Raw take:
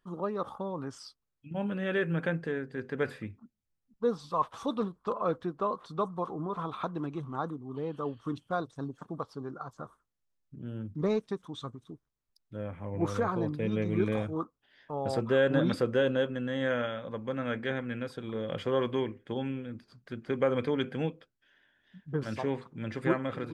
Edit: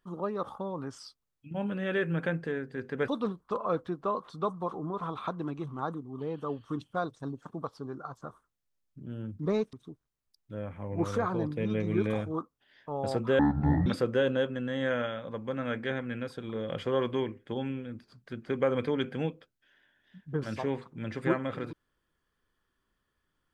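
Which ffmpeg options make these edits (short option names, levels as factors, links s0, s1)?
-filter_complex "[0:a]asplit=5[s0][s1][s2][s3][s4];[s0]atrim=end=3.082[s5];[s1]atrim=start=4.638:end=11.292[s6];[s2]atrim=start=11.748:end=15.414[s7];[s3]atrim=start=15.41:end=15.66,asetpts=PTS-STARTPTS,asetrate=23373,aresample=44100[s8];[s4]atrim=start=15.656[s9];[s5][s6]acrossfade=d=0.004:c1=hsin:c2=hsin[s10];[s10][s7]acrossfade=d=0.004:c1=hsin:c2=hsin[s11];[s11][s8]acrossfade=d=0.004:c1=hsin:c2=hsin[s12];[s12][s9]acrossfade=d=0.004:c1=hsin:c2=hsin"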